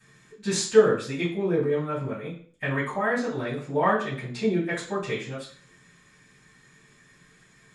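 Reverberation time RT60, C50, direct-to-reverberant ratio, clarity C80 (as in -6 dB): 0.50 s, 7.0 dB, -13.5 dB, 12.0 dB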